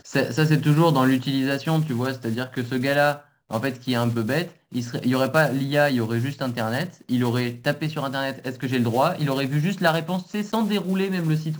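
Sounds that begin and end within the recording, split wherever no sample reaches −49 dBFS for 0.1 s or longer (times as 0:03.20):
0:03.50–0:04.57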